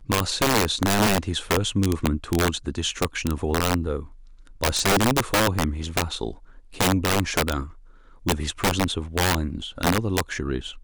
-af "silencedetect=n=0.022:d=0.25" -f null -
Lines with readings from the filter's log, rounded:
silence_start: 4.06
silence_end: 4.47 | silence_duration: 0.41
silence_start: 6.34
silence_end: 6.73 | silence_duration: 0.39
silence_start: 7.69
silence_end: 8.26 | silence_duration: 0.57